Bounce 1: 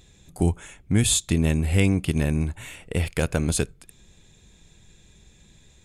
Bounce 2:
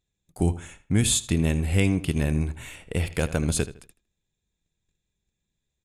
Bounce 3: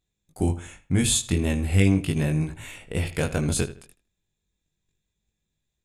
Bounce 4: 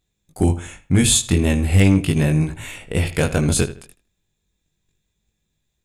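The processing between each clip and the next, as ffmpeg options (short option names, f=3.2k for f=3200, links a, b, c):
-filter_complex "[0:a]agate=range=-26dB:threshold=-46dB:ratio=16:detection=peak,asplit=2[a][b];[b]adelay=79,lowpass=f=4.3k:p=1,volume=-14.5dB,asplit=2[c][d];[d]adelay=79,lowpass=f=4.3k:p=1,volume=0.29,asplit=2[e][f];[f]adelay=79,lowpass=f=4.3k:p=1,volume=0.29[g];[a][c][e][g]amix=inputs=4:normalize=0,volume=-1.5dB"
-af "flanger=delay=19:depth=2.9:speed=0.38,volume=3.5dB"
-af "asoftclip=type=hard:threshold=-12.5dB,volume=6.5dB"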